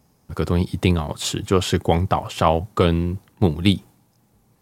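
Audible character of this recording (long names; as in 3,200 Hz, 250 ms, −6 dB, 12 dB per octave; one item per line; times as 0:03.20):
background noise floor −62 dBFS
spectral slope −5.5 dB per octave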